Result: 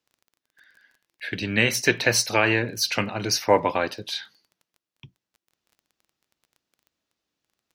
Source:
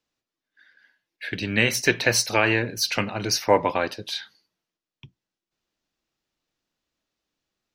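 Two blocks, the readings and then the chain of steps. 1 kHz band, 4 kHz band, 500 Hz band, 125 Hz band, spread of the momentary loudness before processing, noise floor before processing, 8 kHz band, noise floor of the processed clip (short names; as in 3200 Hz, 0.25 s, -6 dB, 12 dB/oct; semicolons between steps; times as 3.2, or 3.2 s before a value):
0.0 dB, 0.0 dB, 0.0 dB, 0.0 dB, 12 LU, under -85 dBFS, 0.0 dB, under -85 dBFS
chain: HPF 55 Hz; crackle 17/s -44 dBFS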